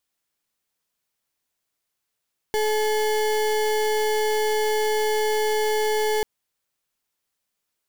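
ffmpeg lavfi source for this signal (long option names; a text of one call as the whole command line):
ffmpeg -f lavfi -i "aevalsrc='0.0794*(2*lt(mod(429*t,1),0.33)-1)':duration=3.69:sample_rate=44100" out.wav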